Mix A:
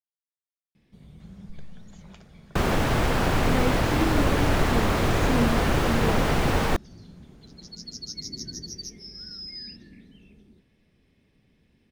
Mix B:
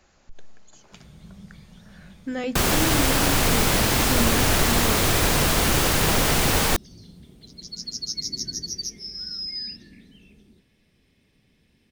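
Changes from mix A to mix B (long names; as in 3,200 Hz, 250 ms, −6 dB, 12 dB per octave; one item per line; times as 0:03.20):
speech: entry −1.20 s
second sound: add high-shelf EQ 5,000 Hz +9.5 dB
master: add high-shelf EQ 2,700 Hz +9 dB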